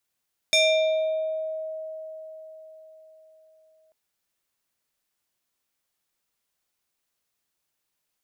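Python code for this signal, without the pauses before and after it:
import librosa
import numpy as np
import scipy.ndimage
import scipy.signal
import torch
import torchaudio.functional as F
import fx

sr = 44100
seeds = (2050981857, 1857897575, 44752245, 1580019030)

y = fx.fm2(sr, length_s=3.39, level_db=-15.5, carrier_hz=633.0, ratio=4.74, index=1.9, index_s=1.29, decay_s=4.62, shape='exponential')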